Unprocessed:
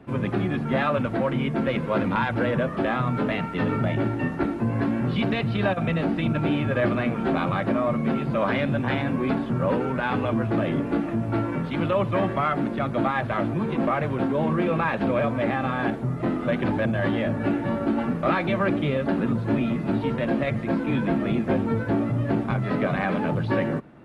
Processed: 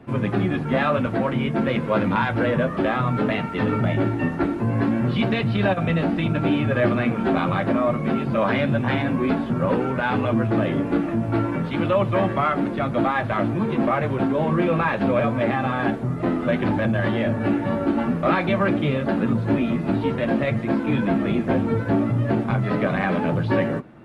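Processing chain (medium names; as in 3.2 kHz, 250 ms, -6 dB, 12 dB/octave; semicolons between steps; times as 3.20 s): flange 0.58 Hz, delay 8.3 ms, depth 3.8 ms, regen -49%; trim +6.5 dB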